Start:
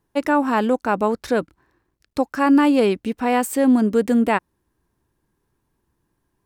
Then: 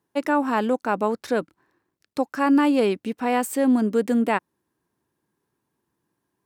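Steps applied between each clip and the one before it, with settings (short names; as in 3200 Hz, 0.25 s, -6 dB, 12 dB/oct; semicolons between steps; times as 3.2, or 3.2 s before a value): HPF 150 Hz 12 dB/oct; gain -3 dB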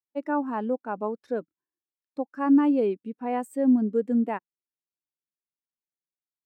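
spectral expander 1.5:1; gain -4 dB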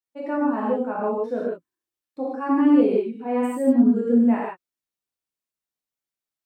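non-linear reverb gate 0.19 s flat, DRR -6 dB; gain -2.5 dB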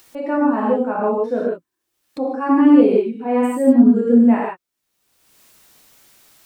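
upward compressor, threshold -31 dBFS; gain +5.5 dB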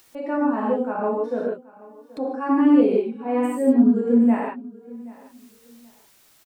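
feedback echo 0.779 s, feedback 25%, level -21 dB; gain -4.5 dB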